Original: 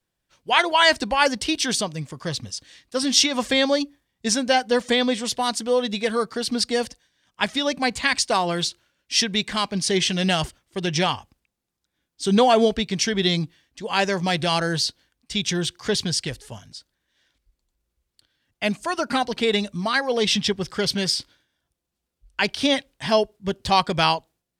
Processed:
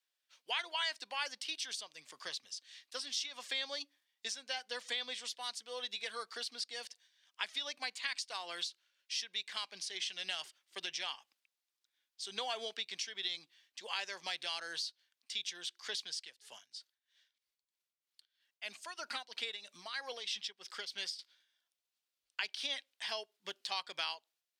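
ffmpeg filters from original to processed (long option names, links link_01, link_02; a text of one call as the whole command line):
ffmpeg -i in.wav -filter_complex "[0:a]asettb=1/sr,asplit=3[link_01][link_02][link_03];[link_01]atrim=end=16.204[link_04];[link_02]atrim=start=16.2:end=21.19,asetpts=PTS-STARTPTS,afade=type=in:duration=0.004:curve=qsin,afade=type=out:start_time=4.986:duration=0.004:curve=qsin,tremolo=f=3.1:d=0.77[link_05];[link_03]atrim=start=21.186[link_06];[link_04][link_05]acrossfade=duration=0.004:curve1=hsin:curve2=qsin[link_07];[link_07][link_06]acrossfade=duration=0.004:curve1=qsin:curve2=hsin,aderivative,acompressor=threshold=-44dB:ratio=2.5,acrossover=split=250 4800:gain=0.158 1 0.158[link_08][link_09][link_10];[link_08][link_09][link_10]amix=inputs=3:normalize=0,volume=5.5dB" out.wav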